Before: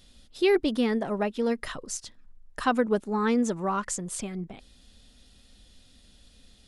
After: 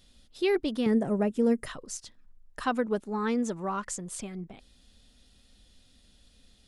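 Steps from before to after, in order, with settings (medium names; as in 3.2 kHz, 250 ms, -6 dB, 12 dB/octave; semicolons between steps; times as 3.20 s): 0.86–1.66 s: graphic EQ 125/250/500/1000/4000/8000 Hz +11/+5/+4/-3/-12/+11 dB; trim -4 dB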